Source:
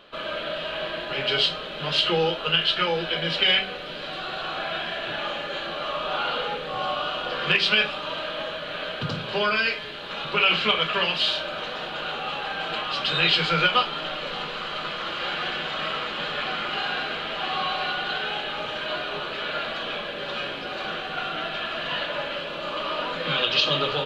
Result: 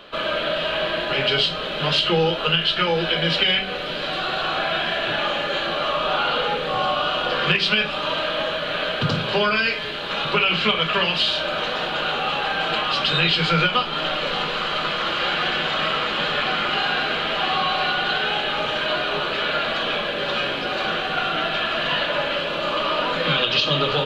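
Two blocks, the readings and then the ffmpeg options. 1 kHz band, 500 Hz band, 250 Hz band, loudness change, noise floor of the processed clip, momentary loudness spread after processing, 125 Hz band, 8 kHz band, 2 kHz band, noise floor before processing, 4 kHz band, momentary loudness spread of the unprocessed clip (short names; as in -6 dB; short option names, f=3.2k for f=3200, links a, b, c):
+5.0 dB, +5.5 dB, +6.5 dB, +4.0 dB, -27 dBFS, 5 LU, +7.0 dB, +4.0 dB, +4.0 dB, -34 dBFS, +3.5 dB, 10 LU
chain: -filter_complex "[0:a]acrossover=split=260[a][b];[b]acompressor=threshold=-26dB:ratio=3[c];[a][c]amix=inputs=2:normalize=0,volume=7.5dB"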